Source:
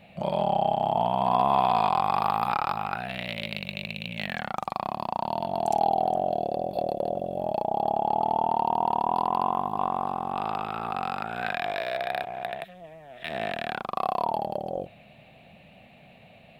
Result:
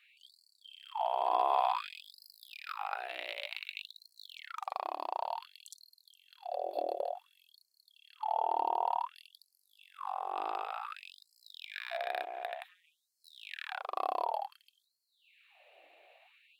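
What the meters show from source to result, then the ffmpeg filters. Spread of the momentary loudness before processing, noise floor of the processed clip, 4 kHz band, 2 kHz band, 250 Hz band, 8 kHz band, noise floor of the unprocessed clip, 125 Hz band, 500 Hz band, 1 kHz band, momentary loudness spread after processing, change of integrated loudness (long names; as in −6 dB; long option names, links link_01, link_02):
10 LU, −78 dBFS, −7.5 dB, −9.5 dB, −23.5 dB, can't be measured, −53 dBFS, below −40 dB, −11.5 dB, −10.0 dB, 19 LU, −9.0 dB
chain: -af "afftfilt=real='re*gte(b*sr/1024,290*pow(4200/290,0.5+0.5*sin(2*PI*0.55*pts/sr)))':imag='im*gte(b*sr/1024,290*pow(4200/290,0.5+0.5*sin(2*PI*0.55*pts/sr)))':win_size=1024:overlap=0.75,volume=-6.5dB"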